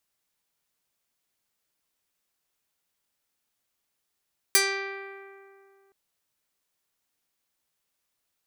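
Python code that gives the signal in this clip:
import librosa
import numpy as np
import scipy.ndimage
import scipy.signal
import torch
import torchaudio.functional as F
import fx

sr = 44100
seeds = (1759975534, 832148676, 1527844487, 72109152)

y = fx.pluck(sr, length_s=1.37, note=67, decay_s=2.43, pick=0.29, brightness='medium')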